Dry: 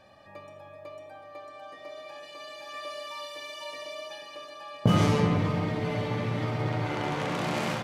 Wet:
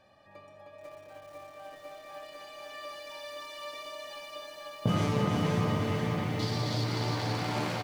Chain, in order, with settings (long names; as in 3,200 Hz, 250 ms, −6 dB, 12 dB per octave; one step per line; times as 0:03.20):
0:06.39–0:06.84: high shelf with overshoot 3,100 Hz +13 dB, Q 3
bouncing-ball delay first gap 310 ms, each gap 0.75×, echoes 5
feedback echo at a low word length 489 ms, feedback 55%, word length 8 bits, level −5 dB
level −6 dB